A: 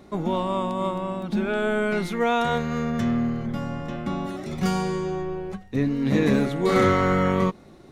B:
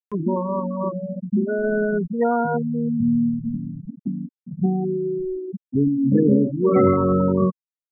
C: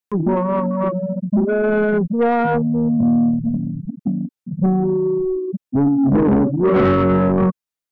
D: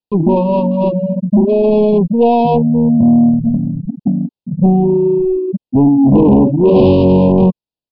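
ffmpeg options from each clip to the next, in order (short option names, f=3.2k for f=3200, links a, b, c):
-af "afftfilt=real='re*gte(hypot(re,im),0.224)':imag='im*gte(hypot(re,im),0.224)':win_size=1024:overlap=0.75,equalizer=f=280:w=0.51:g=5,acompressor=mode=upward:threshold=-28dB:ratio=2.5"
-af "asoftclip=type=tanh:threshold=-17.5dB,volume=7dB"
-filter_complex "[0:a]asplit=2[a][b];[b]adynamicsmooth=sensitivity=1.5:basefreq=940,volume=2.5dB[c];[a][c]amix=inputs=2:normalize=0,aresample=11025,aresample=44100,asuperstop=centerf=1600:order=20:qfactor=1.1,volume=-1dB"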